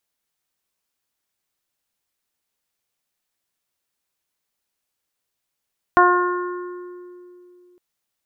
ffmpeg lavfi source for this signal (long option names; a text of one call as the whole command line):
ffmpeg -f lavfi -i "aevalsrc='0.158*pow(10,-3*t/3.07)*sin(2*PI*357*t)+0.2*pow(10,-3*t/0.7)*sin(2*PI*714*t)+0.282*pow(10,-3*t/1.55)*sin(2*PI*1071*t)+0.158*pow(10,-3*t/1.49)*sin(2*PI*1428*t)+0.0562*pow(10,-3*t/1.51)*sin(2*PI*1785*t)':duration=1.81:sample_rate=44100" out.wav